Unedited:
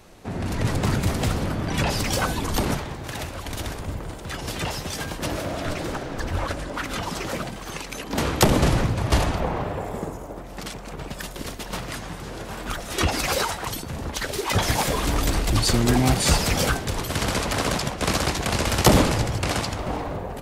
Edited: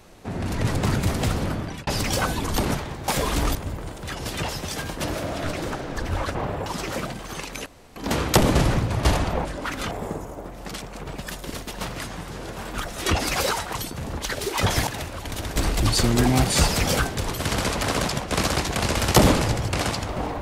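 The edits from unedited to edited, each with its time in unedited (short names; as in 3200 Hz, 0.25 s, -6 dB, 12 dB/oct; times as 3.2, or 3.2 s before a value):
1.53–1.87 fade out
3.08–3.77 swap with 14.79–15.26
6.57–7.03 swap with 9.52–9.83
8.03 insert room tone 0.30 s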